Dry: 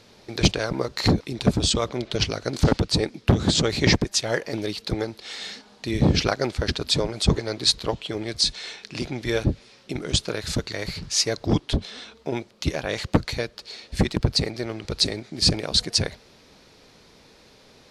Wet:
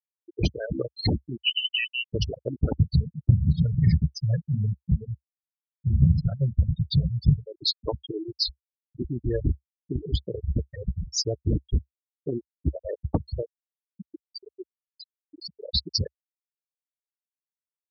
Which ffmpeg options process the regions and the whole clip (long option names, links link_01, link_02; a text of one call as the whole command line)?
ffmpeg -i in.wav -filter_complex "[0:a]asettb=1/sr,asplit=3[link_01][link_02][link_03];[link_01]atrim=end=1.374[link_04];[link_02]atrim=start=1.37:end=2.14,asetpts=PTS-STARTPTS,afade=type=in:duration=0.004:curve=qsin,afade=type=out:start_time=0.766:duration=0.004:curve=qsin,asoftclip=type=hard:threshold=-12dB,lowpass=frequency=2600:width_type=q:width=0.5098,lowpass=frequency=2600:width_type=q:width=0.6013,lowpass=frequency=2600:width_type=q:width=0.9,lowpass=frequency=2600:width_type=q:width=2.563,afreqshift=-3100[link_05];[link_03]atrim=start=2.136[link_06];[link_04][link_05]acrossfade=duration=0.004:curve1=hsin:curve2=qsin[link_07];[link_07][link_06]acrossfade=duration=0.004:curve1=qsin:curve2=hsin,asettb=1/sr,asplit=3[link_08][link_09][link_10];[link_08]atrim=end=2.754[link_11];[link_09]atrim=start=2.75:end=7.47,asetpts=PTS-STARTPTS,afade=type=in:duration=0.004:curve=qsin,afade=type=out:start_time=4.716:duration=0.004:curve=qsin,lowshelf=frequency=220:width_type=q:width=3:gain=12.5,flanger=delay=6.5:depth=7.5:regen=-19:speed=2:shape=sinusoidal[link_12];[link_10]atrim=start=7.466[link_13];[link_11][link_12]acrossfade=duration=0.004:curve1=hsin:curve2=qsin[link_14];[link_14][link_13]acrossfade=duration=0.004:curve1=qsin:curve2=hsin,asettb=1/sr,asplit=3[link_15][link_16][link_17];[link_15]atrim=end=9.054[link_18];[link_16]atrim=start=9.05:end=12.32,asetpts=PTS-STARTPTS,afade=type=in:duration=0.004:curve=qsin,afade=type=out:start_time=3.266:duration=0.004:curve=qsin,lowshelf=frequency=110:gain=7.5,volume=13dB,asoftclip=hard,volume=-13dB[link_19];[link_17]atrim=start=12.316[link_20];[link_18][link_19]acrossfade=duration=0.004:curve1=hsin:curve2=qsin[link_21];[link_21][link_20]acrossfade=duration=0.004:curve1=qsin:curve2=hsin,asettb=1/sr,asplit=3[link_22][link_23][link_24];[link_22]atrim=end=13.454[link_25];[link_23]atrim=start=13.45:end=15.6,asetpts=PTS-STARTPTS,afade=type=in:duration=0.004:curve=qsin,afade=type=out:start_time=2.146:duration=0.004:curve=qsin,acompressor=threshold=-27dB:ratio=4:attack=3.2:release=140:knee=1:detection=peak,highpass=210[link_26];[link_24]atrim=start=15.596[link_27];[link_25][link_26]acrossfade=duration=0.004:curve1=hsin:curve2=qsin[link_28];[link_28][link_27]acrossfade=duration=0.004:curve1=qsin:curve2=hsin,afftfilt=real='re*gte(hypot(re,im),0.2)':imag='im*gte(hypot(re,im),0.2)':win_size=1024:overlap=0.75,equalizer=frequency=68:width_type=o:width=0.87:gain=9,acompressor=threshold=-23dB:ratio=2.5" out.wav